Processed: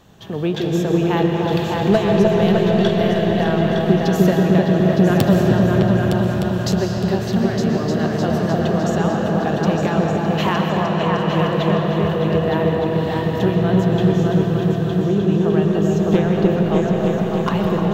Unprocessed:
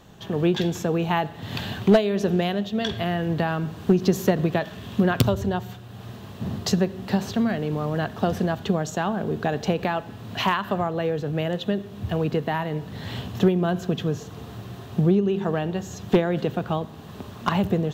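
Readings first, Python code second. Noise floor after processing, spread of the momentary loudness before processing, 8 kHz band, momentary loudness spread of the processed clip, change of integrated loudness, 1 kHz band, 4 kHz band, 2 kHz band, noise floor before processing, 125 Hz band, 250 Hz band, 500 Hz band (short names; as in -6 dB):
-22 dBFS, 12 LU, +2.5 dB, 5 LU, +7.0 dB, +5.5 dB, +4.0 dB, +5.0 dB, -41 dBFS, +8.5 dB, +8.0 dB, +7.5 dB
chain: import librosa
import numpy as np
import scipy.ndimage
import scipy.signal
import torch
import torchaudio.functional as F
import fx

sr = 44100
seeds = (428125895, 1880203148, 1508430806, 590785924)

y = fx.echo_opening(x, sr, ms=304, hz=750, octaves=2, feedback_pct=70, wet_db=0)
y = fx.rev_freeverb(y, sr, rt60_s=5.0, hf_ratio=0.6, predelay_ms=85, drr_db=1.5)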